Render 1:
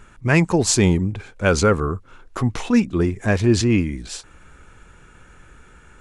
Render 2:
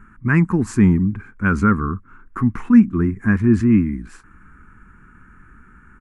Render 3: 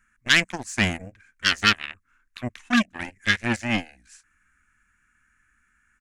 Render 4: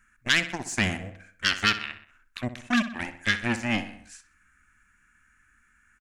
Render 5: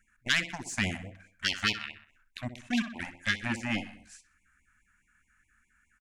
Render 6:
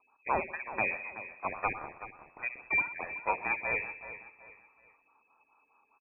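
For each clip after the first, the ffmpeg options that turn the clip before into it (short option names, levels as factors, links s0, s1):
-af "firequalizer=gain_entry='entry(150,0);entry(210,8);entry(570,-20);entry(1100,2);entry(1600,2);entry(3500,-24);entry(10000,-12)':delay=0.05:min_phase=1"
-af "aeval=exprs='0.794*(cos(1*acos(clip(val(0)/0.794,-1,1)))-cos(1*PI/2))+0.0141*(cos(3*acos(clip(val(0)/0.794,-1,1)))-cos(3*PI/2))+0.126*(cos(7*acos(clip(val(0)/0.794,-1,1)))-cos(7*PI/2))':c=same,equalizer=f=160:t=o:w=0.67:g=-7,equalizer=f=400:t=o:w=0.67:g=-6,equalizer=f=1600:t=o:w=0.67:g=10,equalizer=f=6300:t=o:w=0.67:g=6,aexciter=amount=6:drive=7.6:freq=2100,volume=0.376"
-filter_complex "[0:a]asplit=2[s0][s1];[s1]adelay=63,lowpass=f=4300:p=1,volume=0.237,asplit=2[s2][s3];[s3]adelay=63,lowpass=f=4300:p=1,volume=0.47,asplit=2[s4][s5];[s5]adelay=63,lowpass=f=4300:p=1,volume=0.47,asplit=2[s6][s7];[s7]adelay=63,lowpass=f=4300:p=1,volume=0.47,asplit=2[s8][s9];[s9]adelay=63,lowpass=f=4300:p=1,volume=0.47[s10];[s0][s2][s4][s6][s8][s10]amix=inputs=6:normalize=0,acompressor=threshold=0.0224:ratio=1.5,volume=1.33"
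-af "afftfilt=real='re*(1-between(b*sr/1024,350*pow(1500/350,0.5+0.5*sin(2*PI*4.8*pts/sr))/1.41,350*pow(1500/350,0.5+0.5*sin(2*PI*4.8*pts/sr))*1.41))':imag='im*(1-between(b*sr/1024,350*pow(1500/350,0.5+0.5*sin(2*PI*4.8*pts/sr))/1.41,350*pow(1500/350,0.5+0.5*sin(2*PI*4.8*pts/sr))*1.41))':win_size=1024:overlap=0.75,volume=0.596"
-af "aecho=1:1:377|754|1131:0.224|0.0761|0.0259,lowpass=f=2200:t=q:w=0.5098,lowpass=f=2200:t=q:w=0.6013,lowpass=f=2200:t=q:w=0.9,lowpass=f=2200:t=q:w=2.563,afreqshift=-2600"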